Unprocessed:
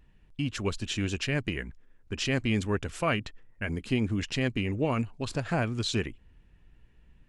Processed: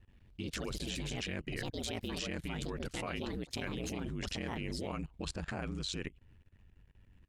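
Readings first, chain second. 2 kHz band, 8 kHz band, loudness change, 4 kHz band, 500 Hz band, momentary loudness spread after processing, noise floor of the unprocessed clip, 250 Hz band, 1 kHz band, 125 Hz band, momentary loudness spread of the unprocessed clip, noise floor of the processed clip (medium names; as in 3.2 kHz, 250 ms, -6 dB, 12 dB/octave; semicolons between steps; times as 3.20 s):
-9.0 dB, -4.0 dB, -9.0 dB, -5.5 dB, -9.0 dB, 3 LU, -60 dBFS, -9.5 dB, -9.0 dB, -10.5 dB, 9 LU, -64 dBFS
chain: ring modulator 47 Hz; ever faster or slower copies 94 ms, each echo +4 st, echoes 2, each echo -6 dB; level held to a coarse grid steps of 21 dB; trim +3.5 dB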